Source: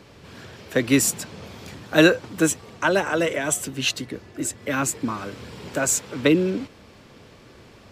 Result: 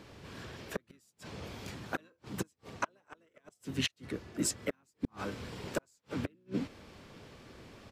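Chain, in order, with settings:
gate with flip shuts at −15 dBFS, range −42 dB
pitch-shifted copies added −7 semitones −7 dB, −3 semitones −13 dB
level −5.5 dB

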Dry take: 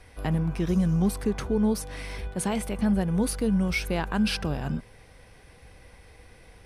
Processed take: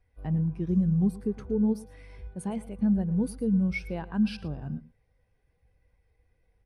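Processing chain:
single-tap delay 112 ms −13 dB
every bin expanded away from the loudest bin 1.5 to 1
level −1.5 dB

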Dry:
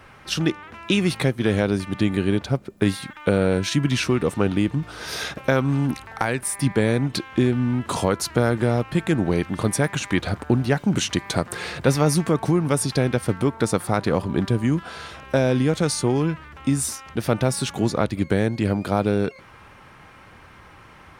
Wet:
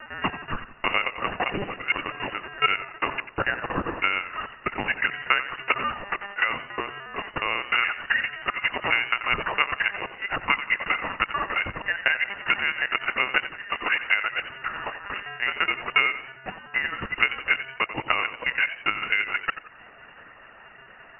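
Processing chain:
slices reordered back to front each 212 ms, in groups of 4
Butterworth high-pass 570 Hz 72 dB per octave
dynamic equaliser 1,200 Hz, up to +4 dB, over −42 dBFS, Q 1.1
brickwall limiter −17 dBFS, peak gain reduction 10.5 dB
transient designer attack +11 dB, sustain −6 dB
pitch vibrato 0.54 Hz 18 cents
on a send: delay with a high-pass on its return 168 ms, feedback 48%, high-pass 2,200 Hz, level −19.5 dB
on the sum: linear-prediction vocoder at 8 kHz pitch kept
voice inversion scrambler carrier 2,800 Hz
feedback echo with a swinging delay time 89 ms, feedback 36%, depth 75 cents, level −12.5 dB

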